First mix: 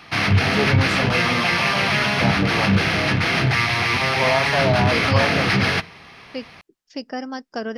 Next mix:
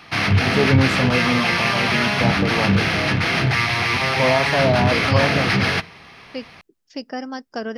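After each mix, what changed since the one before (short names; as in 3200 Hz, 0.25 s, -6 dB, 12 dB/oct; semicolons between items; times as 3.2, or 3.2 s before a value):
first voice: remove weighting filter A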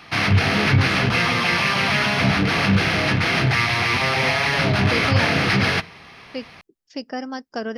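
first voice -10.5 dB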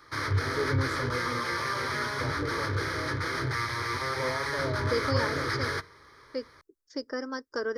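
background -6.5 dB; master: add fixed phaser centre 730 Hz, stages 6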